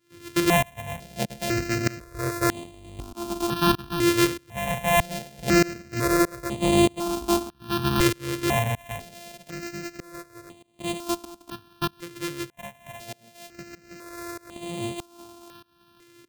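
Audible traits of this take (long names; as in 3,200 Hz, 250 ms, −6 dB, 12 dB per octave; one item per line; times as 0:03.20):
a buzz of ramps at a fixed pitch in blocks of 128 samples
tremolo saw up 1.6 Hz, depth 95%
notches that jump at a steady rate 2 Hz 200–5,400 Hz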